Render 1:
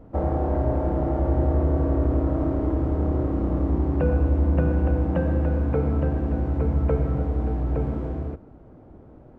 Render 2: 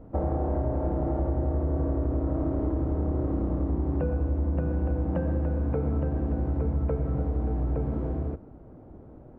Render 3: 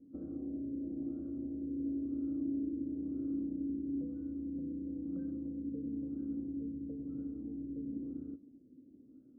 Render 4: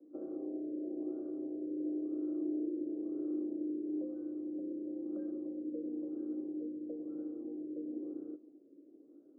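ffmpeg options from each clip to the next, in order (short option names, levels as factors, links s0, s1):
-af "highshelf=f=2100:g=-10,acompressor=threshold=0.0708:ratio=6"
-filter_complex "[0:a]asplit=3[s0][s1][s2];[s0]bandpass=f=270:t=q:w=8,volume=1[s3];[s1]bandpass=f=2290:t=q:w=8,volume=0.501[s4];[s2]bandpass=f=3010:t=q:w=8,volume=0.355[s5];[s3][s4][s5]amix=inputs=3:normalize=0,bandreject=f=650:w=14,afftfilt=real='re*lt(b*sr/1024,600*pow(1600/600,0.5+0.5*sin(2*PI*1*pts/sr)))':imag='im*lt(b*sr/1024,600*pow(1600/600,0.5+0.5*sin(2*PI*1*pts/sr)))':win_size=1024:overlap=0.75,volume=0.891"
-af "afreqshift=26,asuperpass=centerf=700:order=4:qfactor=0.81,volume=2.37"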